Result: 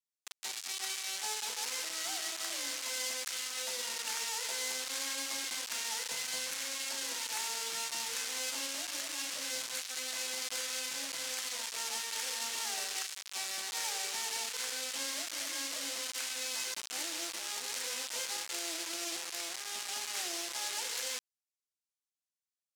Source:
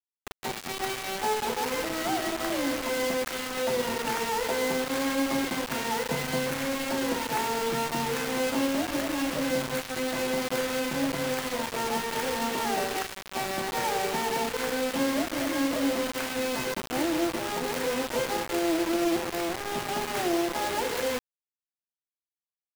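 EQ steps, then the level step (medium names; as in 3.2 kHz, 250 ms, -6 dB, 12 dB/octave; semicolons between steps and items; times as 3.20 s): band-pass filter 6.7 kHz, Q 1; +3.0 dB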